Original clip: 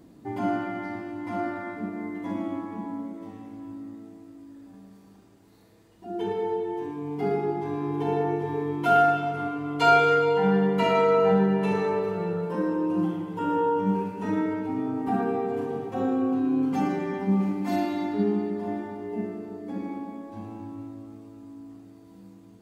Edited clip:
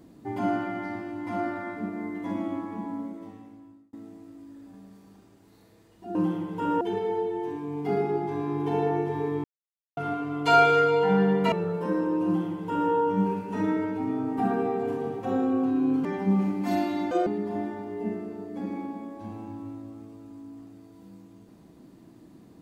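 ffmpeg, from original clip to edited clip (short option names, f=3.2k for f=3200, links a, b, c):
-filter_complex "[0:a]asplit=10[a][b][c][d][e][f][g][h][i][j];[a]atrim=end=3.93,asetpts=PTS-STARTPTS,afade=t=out:st=3.05:d=0.88[k];[b]atrim=start=3.93:end=6.152,asetpts=PTS-STARTPTS,afade=t=in:d=0.004:c=hsin[l];[c]atrim=start=12.938:end=13.602[m];[d]atrim=start=6.148:end=8.78,asetpts=PTS-STARTPTS,afade=t=out:st=2.628:d=0.004:c=hsin[n];[e]atrim=start=8.78:end=9.31,asetpts=PTS-STARTPTS,volume=0[o];[f]atrim=start=9.31:end=10.862,asetpts=PTS-STARTPTS,afade=t=in:d=0.004:c=hsin[p];[g]atrim=start=12.208:end=16.742[q];[h]atrim=start=17.058:end=18.124[r];[i]atrim=start=18.12:end=18.39,asetpts=PTS-STARTPTS,asetrate=76293,aresample=44100[s];[j]atrim=start=18.386[t];[k][l]concat=n=2:v=0:a=1[u];[u][m]acrossfade=d=0.004:c1=hsin:c2=hsin[v];[n][o][p]concat=n=3:v=0:a=1[w];[v][w]acrossfade=d=0.004:c1=hsin:c2=hsin[x];[x][q]acrossfade=d=0.004:c1=hsin:c2=hsin[y];[y][r]acrossfade=d=0.004:c1=hsin:c2=hsin[z];[z][s]acrossfade=d=0.004:c1=hsin:c2=hsin[aa];[aa][t]acrossfade=d=0.004:c1=hsin:c2=hsin"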